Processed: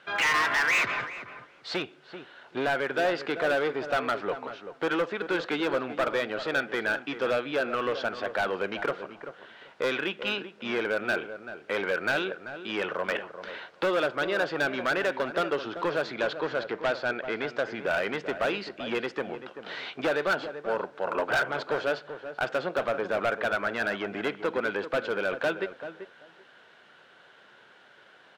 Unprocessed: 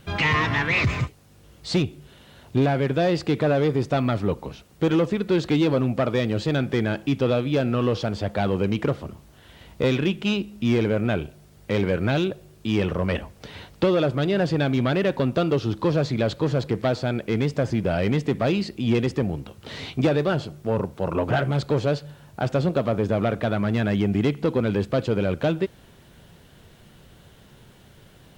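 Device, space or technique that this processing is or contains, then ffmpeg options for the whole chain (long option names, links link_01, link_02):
megaphone: -filter_complex "[0:a]highpass=560,lowpass=3500,equalizer=frequency=1500:width_type=o:width=0.34:gain=9,asoftclip=type=hard:threshold=-21dB,asettb=1/sr,asplit=3[link_01][link_02][link_03];[link_01]atrim=end=16.144[link_04];[link_02]atrim=start=16.14:end=17.75,asetpts=PTS-STARTPTS,afade=type=in:duration=0.004:curve=qsin,afade=type=out:start_time=1.606:duration=0.004:curve=qsin,lowpass=7000[link_05];[link_03]atrim=start=17.746[link_06];[link_04][link_05]acrossfade=duration=0.004:curve1=hsin:curve2=qsin[link_07];[link_07][link_06]acrossfade=duration=0.004:curve1=qsin:curve2=hsin,asplit=2[link_08][link_09];[link_09]adelay=387,lowpass=frequency=1400:poles=1,volume=-10dB,asplit=2[link_10][link_11];[link_11]adelay=387,lowpass=frequency=1400:poles=1,volume=0.16[link_12];[link_08][link_10][link_12]amix=inputs=3:normalize=0"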